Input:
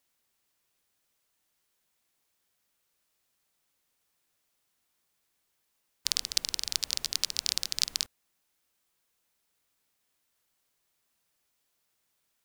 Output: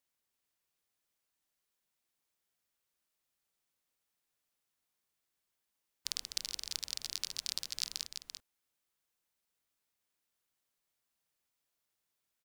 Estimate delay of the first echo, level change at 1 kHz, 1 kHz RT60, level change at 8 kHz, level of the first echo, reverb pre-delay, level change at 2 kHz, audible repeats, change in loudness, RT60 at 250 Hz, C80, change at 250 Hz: 340 ms, -8.5 dB, no reverb, -8.5 dB, -7.5 dB, no reverb, -8.5 dB, 1, -8.5 dB, no reverb, no reverb, -8.5 dB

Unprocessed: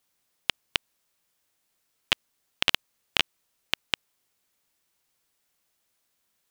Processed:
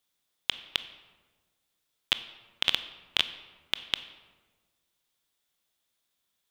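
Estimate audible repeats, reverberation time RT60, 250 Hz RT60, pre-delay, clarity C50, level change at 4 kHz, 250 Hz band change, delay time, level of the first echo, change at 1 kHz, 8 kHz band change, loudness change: no echo, 1.4 s, 1.6 s, 19 ms, 13.0 dB, -0.5 dB, -5.5 dB, no echo, no echo, -5.0 dB, -5.0 dB, -1.5 dB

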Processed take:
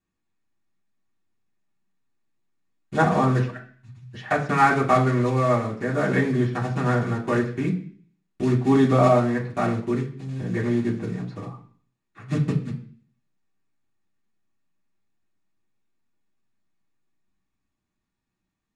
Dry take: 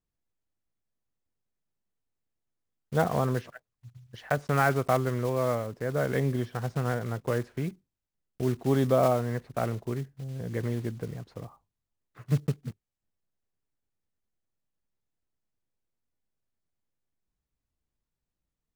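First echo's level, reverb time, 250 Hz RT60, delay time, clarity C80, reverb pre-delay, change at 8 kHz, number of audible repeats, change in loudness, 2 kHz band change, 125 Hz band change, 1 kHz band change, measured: no echo, 0.45 s, 0.60 s, no echo, 14.0 dB, 3 ms, +1.0 dB, no echo, +6.5 dB, +7.5 dB, +5.5 dB, +8.5 dB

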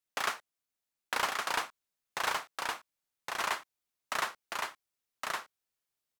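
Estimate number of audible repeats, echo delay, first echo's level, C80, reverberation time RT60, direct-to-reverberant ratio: 1, 1115 ms, -3.0 dB, no reverb, no reverb, no reverb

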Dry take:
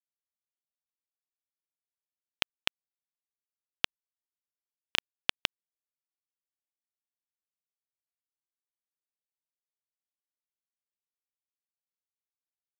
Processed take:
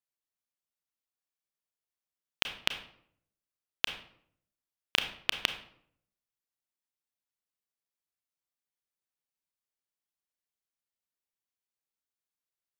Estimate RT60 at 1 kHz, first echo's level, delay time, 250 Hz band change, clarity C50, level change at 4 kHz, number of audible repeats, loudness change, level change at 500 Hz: 0.60 s, no echo, no echo, +1.0 dB, 10.0 dB, +0.5 dB, no echo, +0.5 dB, +1.0 dB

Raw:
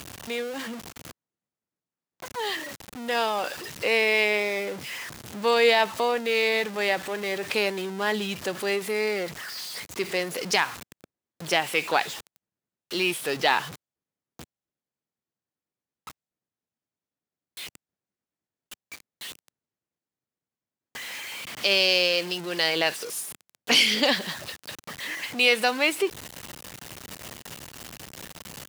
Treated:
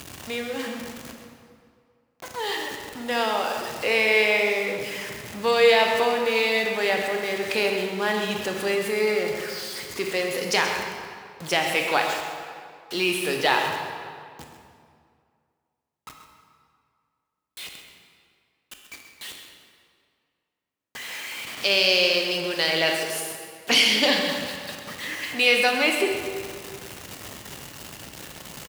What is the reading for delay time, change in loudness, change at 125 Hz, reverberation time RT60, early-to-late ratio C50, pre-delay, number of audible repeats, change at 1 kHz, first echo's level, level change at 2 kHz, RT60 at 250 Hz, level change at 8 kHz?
131 ms, +2.0 dB, +2.0 dB, 2.2 s, 3.0 dB, 19 ms, 1, +2.0 dB, -10.5 dB, +2.5 dB, 2.1 s, +1.5 dB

